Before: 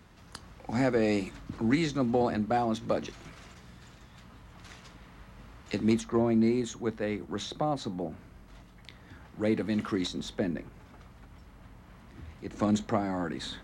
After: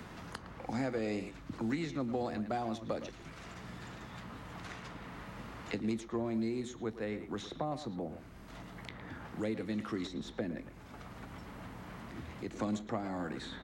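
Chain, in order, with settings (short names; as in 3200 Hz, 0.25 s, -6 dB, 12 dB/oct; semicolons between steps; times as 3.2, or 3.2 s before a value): speakerphone echo 0.11 s, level -11 dB; three-band squash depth 70%; gain -7.5 dB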